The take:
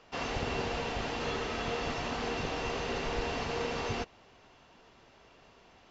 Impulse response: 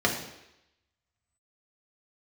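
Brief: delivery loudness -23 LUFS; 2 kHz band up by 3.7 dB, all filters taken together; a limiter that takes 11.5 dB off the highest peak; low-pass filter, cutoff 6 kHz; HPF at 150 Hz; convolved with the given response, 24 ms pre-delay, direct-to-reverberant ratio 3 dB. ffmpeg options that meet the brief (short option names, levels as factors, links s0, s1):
-filter_complex "[0:a]highpass=150,lowpass=6000,equalizer=f=2000:t=o:g=5,alimiter=level_in=2.82:limit=0.0631:level=0:latency=1,volume=0.355,asplit=2[s0][s1];[1:a]atrim=start_sample=2205,adelay=24[s2];[s1][s2]afir=irnorm=-1:irlink=0,volume=0.15[s3];[s0][s3]amix=inputs=2:normalize=0,volume=5.96"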